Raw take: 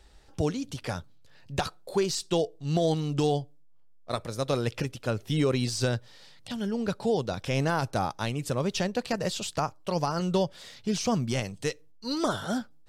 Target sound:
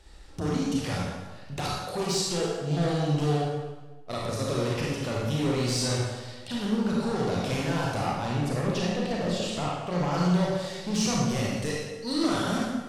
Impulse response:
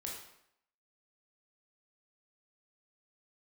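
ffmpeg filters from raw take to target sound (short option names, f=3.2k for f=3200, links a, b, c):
-filter_complex "[0:a]asettb=1/sr,asplit=3[a][b][c];[a]atrim=end=8.064[d];[b]atrim=start=8.06:end=10.12,asetpts=PTS-STARTPTS,afade=t=in:d=0.004:c=qsin,afade=t=out:st=2.056:d=0.004:c=qsin,highshelf=f=4.1k:g=-12[e];[c]atrim=start=10.116[f];[d][e]acrossfade=d=0.004:c1=hsin:c2=qsin[g];[g][f]acrossfade=d=0.004:c1=qsin:c2=hsin,alimiter=limit=-21dB:level=0:latency=1,aeval=exprs='0.0891*sin(PI/2*1.58*val(0)/0.0891)':c=same[h];[1:a]atrim=start_sample=2205,asetrate=25137,aresample=44100[i];[h][i]afir=irnorm=-1:irlink=0,volume=-4dB"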